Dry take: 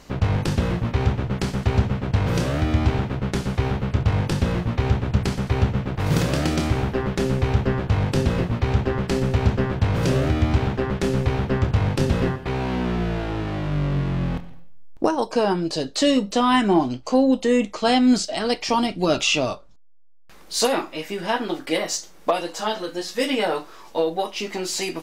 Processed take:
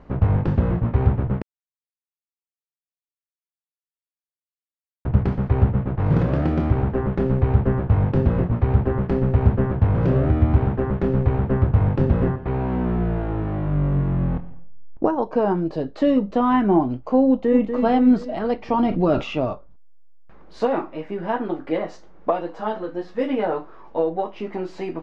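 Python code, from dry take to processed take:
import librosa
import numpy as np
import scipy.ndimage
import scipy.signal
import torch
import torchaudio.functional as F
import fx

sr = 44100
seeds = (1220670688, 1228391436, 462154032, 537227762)

y = fx.echo_throw(x, sr, start_s=17.28, length_s=0.47, ms=240, feedback_pct=55, wet_db=-7.0)
y = fx.env_flatten(y, sr, amount_pct=50, at=(18.79, 19.34))
y = fx.edit(y, sr, fx.silence(start_s=1.42, length_s=3.63), tone=tone)
y = scipy.signal.sosfilt(scipy.signal.butter(2, 1300.0, 'lowpass', fs=sr, output='sos'), y)
y = fx.low_shelf(y, sr, hz=170.0, db=4.0)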